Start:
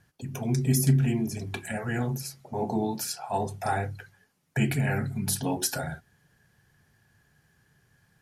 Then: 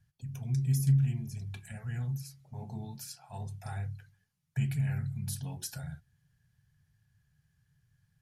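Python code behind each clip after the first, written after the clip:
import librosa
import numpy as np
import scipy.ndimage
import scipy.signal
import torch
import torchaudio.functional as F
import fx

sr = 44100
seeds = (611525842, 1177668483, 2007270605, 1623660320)

y = fx.curve_eq(x, sr, hz=(140.0, 300.0, 3500.0), db=(0, -21, -9))
y = F.gain(torch.from_numpy(y), -2.5).numpy()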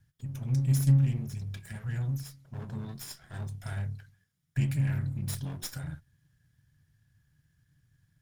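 y = fx.lower_of_two(x, sr, delay_ms=0.57)
y = F.gain(torch.from_numpy(y), 3.0).numpy()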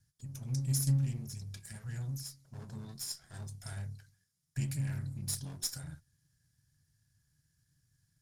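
y = fx.band_shelf(x, sr, hz=7100.0, db=11.5, octaves=1.7)
y = F.gain(torch.from_numpy(y), -7.0).numpy()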